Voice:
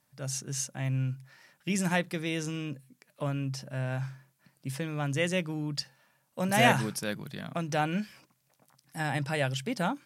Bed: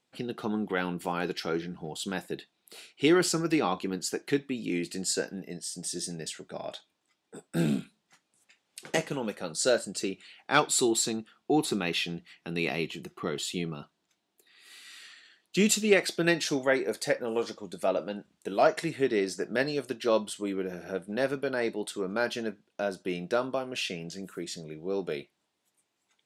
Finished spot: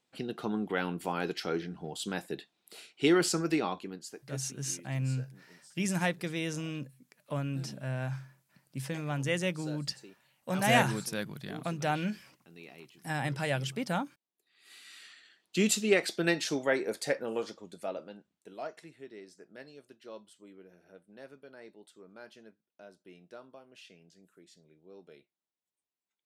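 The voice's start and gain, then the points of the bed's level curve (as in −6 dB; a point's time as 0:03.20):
4.10 s, −2.0 dB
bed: 0:03.51 −2 dB
0:04.49 −20.5 dB
0:14.29 −20.5 dB
0:14.71 −3 dB
0:17.25 −3 dB
0:19.02 −21 dB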